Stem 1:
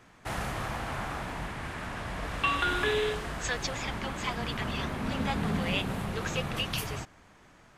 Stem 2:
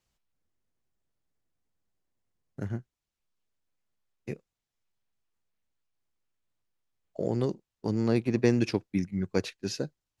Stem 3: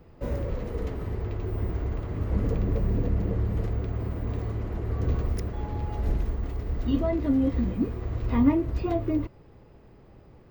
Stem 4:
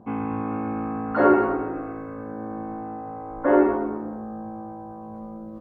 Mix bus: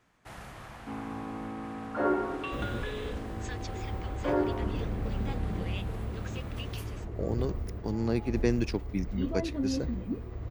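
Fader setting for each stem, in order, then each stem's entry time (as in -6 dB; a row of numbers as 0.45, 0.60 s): -11.5, -3.5, -7.5, -10.5 dB; 0.00, 0.00, 2.30, 0.80 s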